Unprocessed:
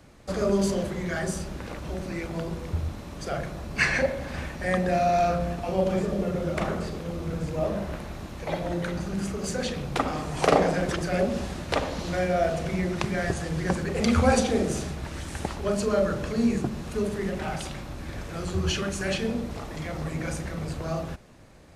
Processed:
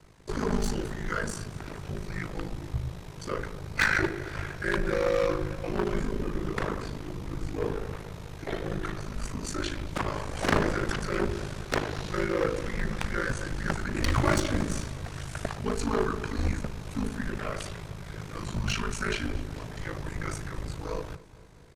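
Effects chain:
wavefolder on the positive side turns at −19.5 dBFS
dynamic equaliser 1,700 Hz, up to +5 dB, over −44 dBFS, Q 1.5
frequency shifter −180 Hz
ring modulation 26 Hz
on a send: repeating echo 228 ms, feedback 60%, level −20 dB

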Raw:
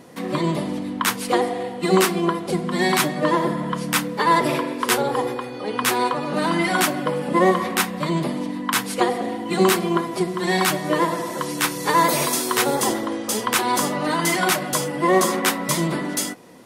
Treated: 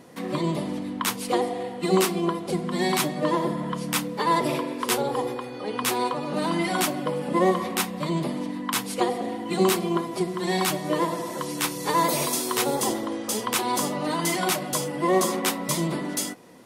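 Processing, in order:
dynamic equaliser 1,600 Hz, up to −6 dB, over −37 dBFS, Q 1.7
level −3.5 dB

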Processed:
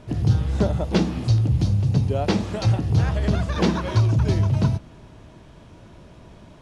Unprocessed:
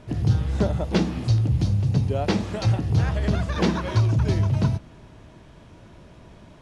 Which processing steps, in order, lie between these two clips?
parametric band 1,900 Hz −2 dB
level +1.5 dB

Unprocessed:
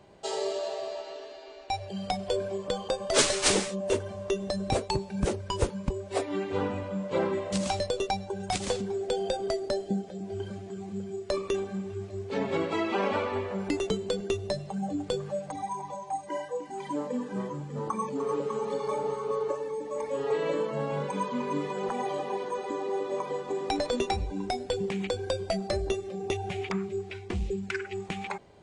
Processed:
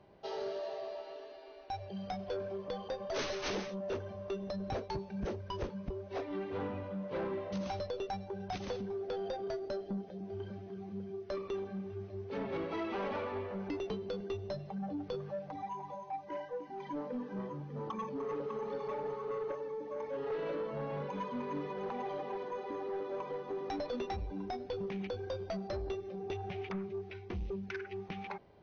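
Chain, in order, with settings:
high-shelf EQ 4,200 Hz −11 dB
soft clipping −26 dBFS, distortion −13 dB
linear-phase brick-wall low-pass 6,400 Hz
level −5.5 dB

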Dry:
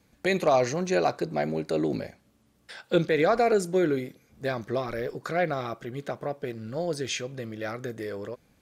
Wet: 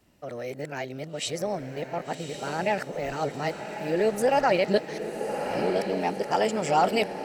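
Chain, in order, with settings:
played backwards from end to start
speed change +19%
feedback delay with all-pass diffusion 1,129 ms, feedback 55%, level −7.5 dB

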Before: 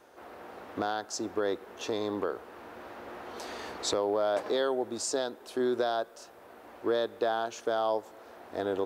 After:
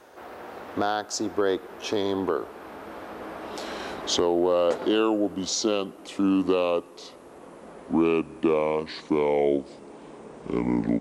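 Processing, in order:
gliding playback speed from 102% → 59%
level +6 dB

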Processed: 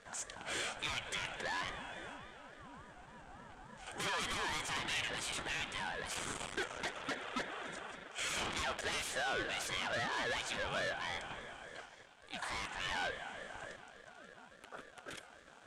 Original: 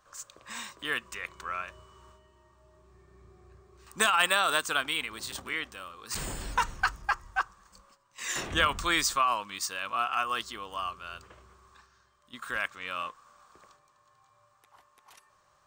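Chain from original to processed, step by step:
phase distortion by the signal itself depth 0.24 ms
parametric band 4,600 Hz −9 dB 0.93 octaves
spring reverb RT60 3.2 s, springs 40 ms, chirp 50 ms, DRR 18 dB
downward compressor, threshold −32 dBFS, peak gain reduction 9 dB
soft clipping −32 dBFS, distortion −13 dB
leveller curve on the samples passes 3
loudspeaker in its box 290–9,200 Hz, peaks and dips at 320 Hz −8 dB, 830 Hz +4 dB, 1,700 Hz −8 dB, 2,800 Hz +7 dB
ring modulator whose carrier an LFO sweeps 470 Hz, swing 30%, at 3.5 Hz
level +1 dB

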